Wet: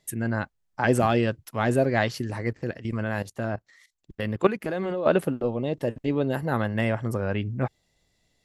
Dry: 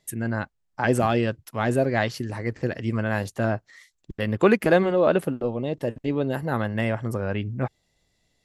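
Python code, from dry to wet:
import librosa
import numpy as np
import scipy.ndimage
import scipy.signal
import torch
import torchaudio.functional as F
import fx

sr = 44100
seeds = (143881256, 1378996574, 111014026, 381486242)

y = fx.level_steps(x, sr, step_db=14, at=(2.52, 5.06))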